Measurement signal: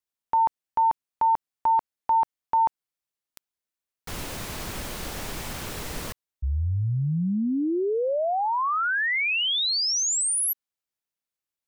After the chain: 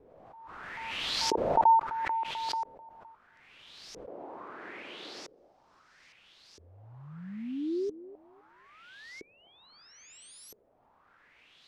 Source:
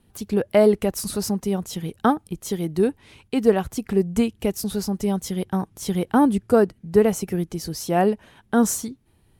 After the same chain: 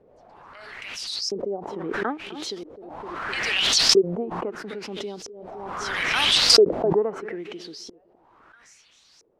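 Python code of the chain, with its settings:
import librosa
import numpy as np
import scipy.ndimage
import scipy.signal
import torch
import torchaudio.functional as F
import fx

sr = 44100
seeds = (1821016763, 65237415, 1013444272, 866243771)

p1 = fx.filter_lfo_highpass(x, sr, shape='square', hz=0.38, low_hz=340.0, high_hz=5300.0, q=2.2)
p2 = fx.quant_dither(p1, sr, seeds[0], bits=8, dither='triangular')
p3 = p2 + fx.echo_feedback(p2, sr, ms=257, feedback_pct=32, wet_db=-20.0, dry=0)
p4 = fx.filter_lfo_lowpass(p3, sr, shape='saw_up', hz=0.76, low_hz=430.0, high_hz=5700.0, q=4.4)
p5 = fx.pre_swell(p4, sr, db_per_s=24.0)
y = p5 * 10.0 ** (-13.0 / 20.0)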